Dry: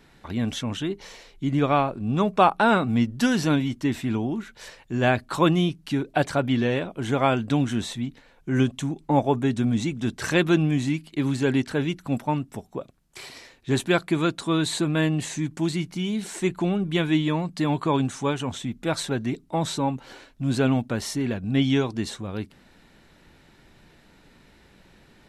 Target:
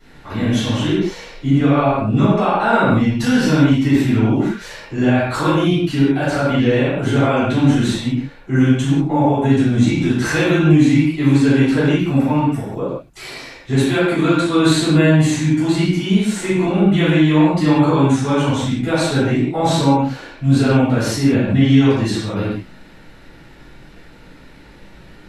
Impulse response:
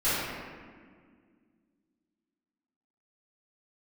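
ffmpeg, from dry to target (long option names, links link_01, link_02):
-filter_complex "[0:a]alimiter=limit=-16.5dB:level=0:latency=1:release=160[link_01];[1:a]atrim=start_sample=2205,afade=type=out:start_time=0.25:duration=0.01,atrim=end_sample=11466[link_02];[link_01][link_02]afir=irnorm=-1:irlink=0,volume=-1.5dB"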